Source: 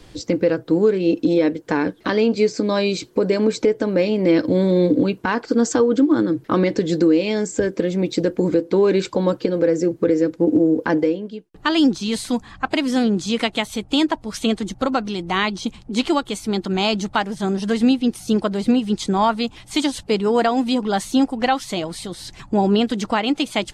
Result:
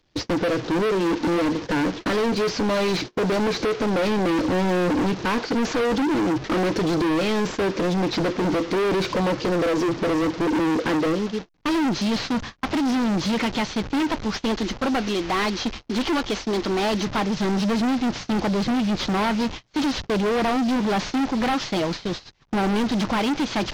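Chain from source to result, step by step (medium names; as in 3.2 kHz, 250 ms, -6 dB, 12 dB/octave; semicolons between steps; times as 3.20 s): one-bit delta coder 32 kbps, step -33 dBFS; gate -32 dBFS, range -34 dB; 14.45–17.07 s: peaking EQ 160 Hz -12 dB 0.68 oct; overload inside the chain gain 26 dB; trim +6 dB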